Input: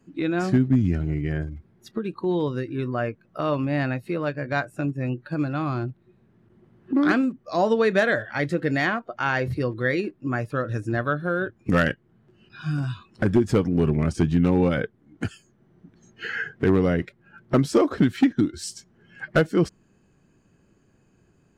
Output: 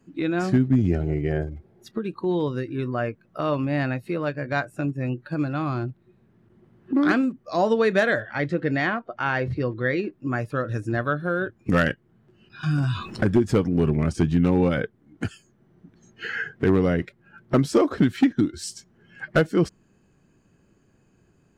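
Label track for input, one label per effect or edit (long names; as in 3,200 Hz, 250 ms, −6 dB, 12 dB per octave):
0.780000	1.830000	gain on a spectral selection 340–870 Hz +8 dB
8.200000	10.120000	high-frequency loss of the air 110 metres
12.630000	13.280000	envelope flattener amount 50%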